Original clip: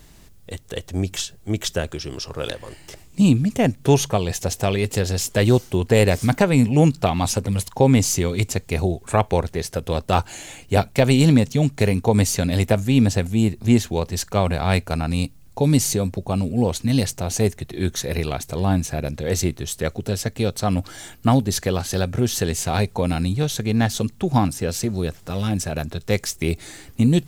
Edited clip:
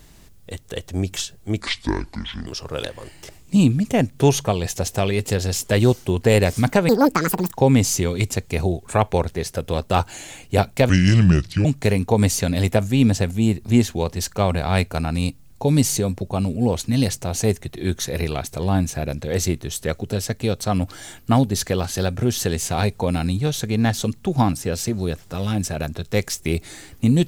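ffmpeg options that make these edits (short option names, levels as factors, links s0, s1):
-filter_complex "[0:a]asplit=7[s0][s1][s2][s3][s4][s5][s6];[s0]atrim=end=1.604[s7];[s1]atrim=start=1.6:end=2.12,asetpts=PTS-STARTPTS,asetrate=26460,aresample=44100[s8];[s2]atrim=start=2.116:end=6.544[s9];[s3]atrim=start=6.54:end=7.71,asetpts=PTS-STARTPTS,asetrate=81144,aresample=44100[s10];[s4]atrim=start=7.706:end=11.084[s11];[s5]atrim=start=11.08:end=11.61,asetpts=PTS-STARTPTS,asetrate=30870,aresample=44100[s12];[s6]atrim=start=11.606[s13];[s7][s8]acrossfade=d=0.004:c1=hsin:c2=hsin[s14];[s14][s9]acrossfade=d=0.004:c1=hsin:c2=hsin[s15];[s15][s10]acrossfade=d=0.004:c1=hsin:c2=hsin[s16];[s16][s11]acrossfade=d=0.004:c1=hsin:c2=hsin[s17];[s17][s12]acrossfade=d=0.004:c1=hsin:c2=hsin[s18];[s18][s13]acrossfade=d=0.004:c1=hsin:c2=hsin"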